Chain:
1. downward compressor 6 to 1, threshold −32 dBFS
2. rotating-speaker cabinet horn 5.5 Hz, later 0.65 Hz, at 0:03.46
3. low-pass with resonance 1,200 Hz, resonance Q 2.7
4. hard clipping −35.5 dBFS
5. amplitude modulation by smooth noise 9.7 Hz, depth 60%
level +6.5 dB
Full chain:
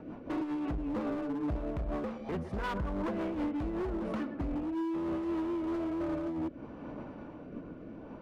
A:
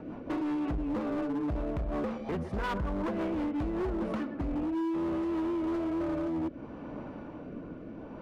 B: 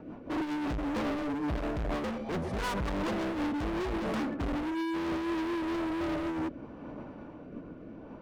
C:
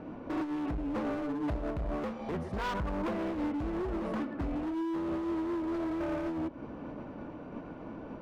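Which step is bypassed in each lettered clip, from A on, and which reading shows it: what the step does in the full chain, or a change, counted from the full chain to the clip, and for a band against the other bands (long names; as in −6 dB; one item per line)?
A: 5, change in crest factor −2.5 dB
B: 1, average gain reduction 8.0 dB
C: 2, 4 kHz band +2.0 dB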